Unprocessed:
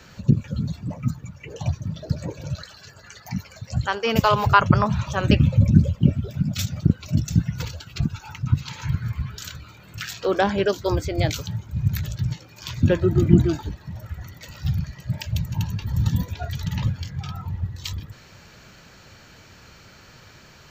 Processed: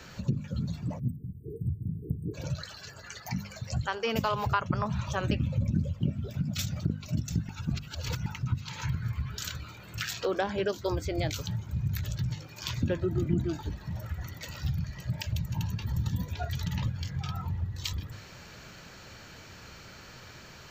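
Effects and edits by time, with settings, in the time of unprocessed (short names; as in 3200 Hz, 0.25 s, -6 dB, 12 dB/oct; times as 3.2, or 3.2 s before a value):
0.99–2.34 spectral delete 470–8100 Hz
7.49–8.26 reverse
whole clip: notches 50/100/150/200/250 Hz; compressor 2.5:1, threshold -30 dBFS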